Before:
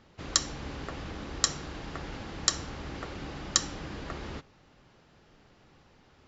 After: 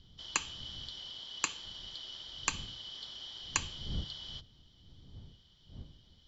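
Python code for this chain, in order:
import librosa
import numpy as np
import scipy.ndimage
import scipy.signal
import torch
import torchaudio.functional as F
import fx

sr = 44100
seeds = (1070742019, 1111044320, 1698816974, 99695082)

y = fx.band_shuffle(x, sr, order='3412')
y = fx.dmg_wind(y, sr, seeds[0], corner_hz=110.0, level_db=-42.0)
y = y * librosa.db_to_amplitude(-7.0)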